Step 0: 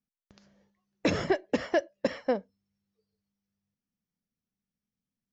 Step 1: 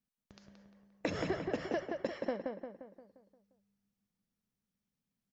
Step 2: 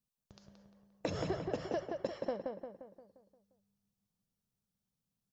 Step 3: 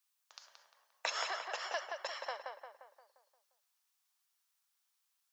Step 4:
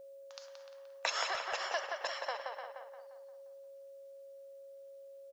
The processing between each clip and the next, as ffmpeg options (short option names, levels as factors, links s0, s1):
-filter_complex "[0:a]acompressor=threshold=0.0224:ratio=6,asplit=2[s0][s1];[s1]adelay=175,lowpass=f=2600:p=1,volume=0.668,asplit=2[s2][s3];[s3]adelay=175,lowpass=f=2600:p=1,volume=0.51,asplit=2[s4][s5];[s5]adelay=175,lowpass=f=2600:p=1,volume=0.51,asplit=2[s6][s7];[s7]adelay=175,lowpass=f=2600:p=1,volume=0.51,asplit=2[s8][s9];[s9]adelay=175,lowpass=f=2600:p=1,volume=0.51,asplit=2[s10][s11];[s11]adelay=175,lowpass=f=2600:p=1,volume=0.51,asplit=2[s12][s13];[s13]adelay=175,lowpass=f=2600:p=1,volume=0.51[s14];[s2][s4][s6][s8][s10][s12][s14]amix=inputs=7:normalize=0[s15];[s0][s15]amix=inputs=2:normalize=0"
-af "equalizer=f=125:t=o:w=1:g=4,equalizer=f=250:t=o:w=1:g=-6,equalizer=f=2000:t=o:w=1:g=-9,volume=1.12"
-af "highpass=f=940:w=0.5412,highpass=f=940:w=1.3066,volume=3.16"
-filter_complex "[0:a]asplit=2[s0][s1];[s1]adelay=300,highpass=300,lowpass=3400,asoftclip=type=hard:threshold=0.0422,volume=0.398[s2];[s0][s2]amix=inputs=2:normalize=0,aeval=exprs='val(0)+0.00251*sin(2*PI*550*n/s)':c=same,volume=1.33"